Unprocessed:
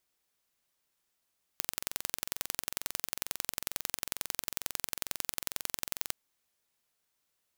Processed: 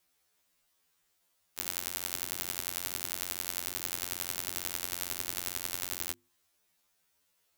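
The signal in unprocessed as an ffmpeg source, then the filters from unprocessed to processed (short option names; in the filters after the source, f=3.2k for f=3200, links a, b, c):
-f lavfi -i "aevalsrc='0.668*eq(mod(n,1986),0)*(0.5+0.5*eq(mod(n,3972),0))':d=4.54:s=44100"
-filter_complex "[0:a]bandreject=f=50:t=h:w=6,bandreject=f=100:t=h:w=6,bandreject=f=150:t=h:w=6,bandreject=f=200:t=h:w=6,bandreject=f=250:t=h:w=6,bandreject=f=300:t=h:w=6,bandreject=f=350:t=h:w=6,asplit=2[a][b];[b]alimiter=limit=-12.5dB:level=0:latency=1:release=197,volume=2.5dB[c];[a][c]amix=inputs=2:normalize=0,afftfilt=real='re*2*eq(mod(b,4),0)':imag='im*2*eq(mod(b,4),0)':win_size=2048:overlap=0.75"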